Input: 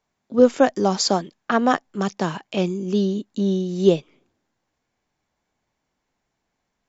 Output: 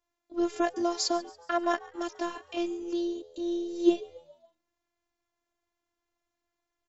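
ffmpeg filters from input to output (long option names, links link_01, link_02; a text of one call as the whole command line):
ffmpeg -i in.wav -filter_complex "[0:a]afftfilt=real='hypot(re,im)*cos(PI*b)':imag='0':win_size=512:overlap=0.75,asplit=5[link_01][link_02][link_03][link_04][link_05];[link_02]adelay=140,afreqshift=80,volume=-21dB[link_06];[link_03]adelay=280,afreqshift=160,volume=-27.2dB[link_07];[link_04]adelay=420,afreqshift=240,volume=-33.4dB[link_08];[link_05]adelay=560,afreqshift=320,volume=-39.6dB[link_09];[link_01][link_06][link_07][link_08][link_09]amix=inputs=5:normalize=0,volume=-4.5dB" out.wav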